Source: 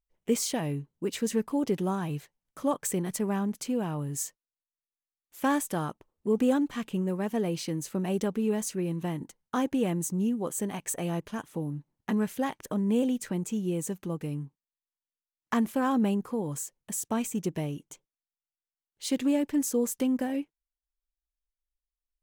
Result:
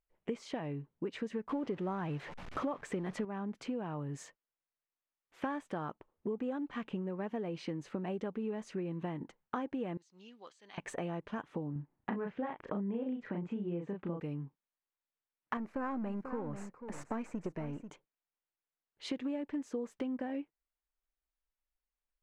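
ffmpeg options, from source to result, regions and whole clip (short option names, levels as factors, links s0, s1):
-filter_complex "[0:a]asettb=1/sr,asplit=3[s0][s1][s2];[s0]atrim=end=1.494[s3];[s1]atrim=start=1.49:end=3.25,asetpts=PTS-STARTPTS,afade=t=in:d=0.004:c=qsin,afade=t=out:st=1.756:d=0.004:c=qsin,aeval=exprs='val(0)+0.5*0.0075*sgn(val(0))':c=same,acontrast=81[s4];[s2]atrim=start=3.246[s5];[s3][s4]acrossfade=d=0.004:c1=hsin:c2=qsin[s6];[s6][s5]acrossfade=d=0.004:c1=qsin:c2=hsin,asettb=1/sr,asplit=3[s7][s8][s9];[s7]atrim=end=9.974[s10];[s8]atrim=start=9.97:end=10.78,asetpts=PTS-STARTPTS,afade=t=in:d=0.004:c=qsin,afade=t=out:st=0.806:d=0.004:c=qsin,aderivative,acompressor=threshold=0.00501:ratio=2.5:attack=3.2:release=140:knee=1:detection=peak,lowpass=f=4600:t=q:w=3.8[s11];[s9]atrim=start=10.776[s12];[s10][s11]acrossfade=d=0.004:c1=hsin:c2=qsin[s13];[s13][s12]acrossfade=d=0.004:c1=qsin:c2=hsin,asettb=1/sr,asplit=3[s14][s15][s16];[s14]atrim=end=11.724[s17];[s15]atrim=start=11.72:end=14.2,asetpts=PTS-STARTPTS,afade=t=in:d=0.004:c=qsin,afade=t=out:st=2.476:d=0.004:c=qsin,lowpass=2600,asplit=2[s18][s19];[s19]adelay=35,volume=0.708[s20];[s18][s20]amix=inputs=2:normalize=0,atrim=end_sample=109368[s21];[s16]atrim=start=14.196[s22];[s17][s21]acrossfade=d=0.004:c1=hsin:c2=qsin[s23];[s23][s22]acrossfade=d=0.004:c1=qsin:c2=hsin,asettb=1/sr,asplit=3[s24][s25][s26];[s24]atrim=end=15.574[s27];[s25]atrim=start=15.57:end=17.9,asetpts=PTS-STARTPTS,afade=t=in:d=0.004:c=qsin,afade=t=out:st=2.326:d=0.004:c=qsin,aeval=exprs='if(lt(val(0),0),0.447*val(0),val(0))':c=same,equalizer=f=3300:t=o:w=0.39:g=-13,aecho=1:1:489:0.188,atrim=end_sample=102753[s28];[s26]atrim=start=17.896[s29];[s27][s28]acrossfade=d=0.004:c1=hsin:c2=qsin[s30];[s30][s29]acrossfade=d=0.004:c1=qsin:c2=hsin,lowpass=2200,lowshelf=f=250:g=-7,acompressor=threshold=0.0112:ratio=6,volume=1.58"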